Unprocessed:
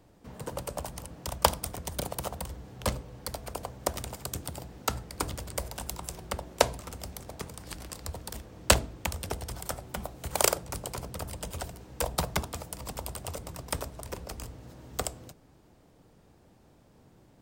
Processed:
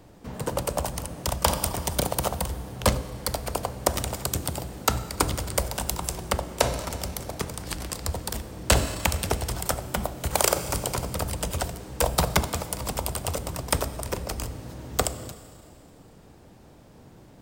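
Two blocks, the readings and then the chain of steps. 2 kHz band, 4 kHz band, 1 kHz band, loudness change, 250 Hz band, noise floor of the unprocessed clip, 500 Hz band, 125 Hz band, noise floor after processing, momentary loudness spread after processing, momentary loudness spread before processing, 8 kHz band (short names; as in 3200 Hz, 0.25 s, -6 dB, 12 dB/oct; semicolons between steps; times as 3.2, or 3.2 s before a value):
+5.0 dB, +5.0 dB, +5.5 dB, +6.0 dB, +7.5 dB, -60 dBFS, +5.5 dB, +8.0 dB, -51 dBFS, 10 LU, 14 LU, +5.5 dB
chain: Schroeder reverb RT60 2.3 s, combs from 29 ms, DRR 15.5 dB; maximiser +12 dB; gain -3.5 dB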